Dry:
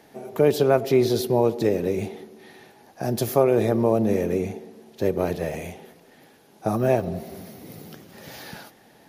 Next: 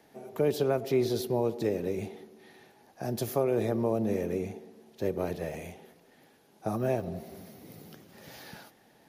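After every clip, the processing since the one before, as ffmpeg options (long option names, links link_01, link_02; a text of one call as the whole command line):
ffmpeg -i in.wav -filter_complex "[0:a]acrossover=split=470|3000[link_01][link_02][link_03];[link_02]acompressor=threshold=-21dB:ratio=6[link_04];[link_01][link_04][link_03]amix=inputs=3:normalize=0,volume=-7.5dB" out.wav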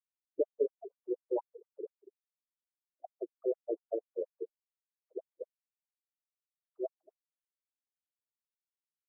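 ffmpeg -i in.wav -af "afftfilt=real='re*gte(hypot(re,im),0.1)':imag='im*gte(hypot(re,im),0.1)':win_size=1024:overlap=0.75,afftfilt=real='re*between(b*sr/1024,380*pow(7700/380,0.5+0.5*sin(2*PI*4.2*pts/sr))/1.41,380*pow(7700/380,0.5+0.5*sin(2*PI*4.2*pts/sr))*1.41)':imag='im*between(b*sr/1024,380*pow(7700/380,0.5+0.5*sin(2*PI*4.2*pts/sr))/1.41,380*pow(7700/380,0.5+0.5*sin(2*PI*4.2*pts/sr))*1.41)':win_size=1024:overlap=0.75" out.wav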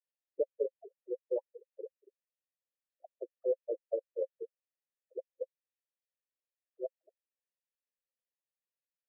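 ffmpeg -i in.wav -filter_complex "[0:a]asplit=3[link_01][link_02][link_03];[link_01]bandpass=frequency=530:width_type=q:width=8,volume=0dB[link_04];[link_02]bandpass=frequency=1840:width_type=q:width=8,volume=-6dB[link_05];[link_03]bandpass=frequency=2480:width_type=q:width=8,volume=-9dB[link_06];[link_04][link_05][link_06]amix=inputs=3:normalize=0,volume=7dB" out.wav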